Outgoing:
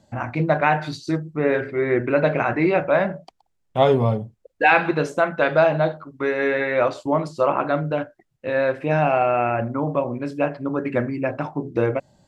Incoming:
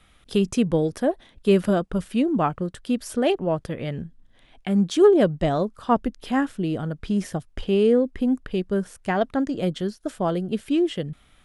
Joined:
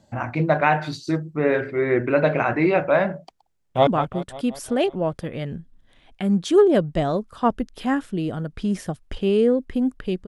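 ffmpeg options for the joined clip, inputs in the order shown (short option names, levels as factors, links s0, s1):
-filter_complex "[0:a]apad=whole_dur=10.27,atrim=end=10.27,atrim=end=3.872[s0];[1:a]atrim=start=2.328:end=8.73[s1];[s0][s1]acrossfade=d=0.004:c1=hsin:c2=hsin,asplit=2[s2][s3];[s3]afade=t=in:st=3.56:d=0.01,afade=t=out:st=3.87:d=0.01,aecho=0:1:180|360|540|720|900|1080|1260|1440:0.223872|0.145517|0.094586|0.0614809|0.0399626|0.0259757|0.0168842|0.0109747[s4];[s2][s4]amix=inputs=2:normalize=0"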